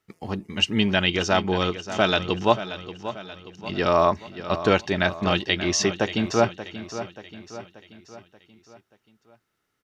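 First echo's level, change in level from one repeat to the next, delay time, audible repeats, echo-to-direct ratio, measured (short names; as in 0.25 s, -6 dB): -12.5 dB, -6.0 dB, 0.582 s, 4, -11.5 dB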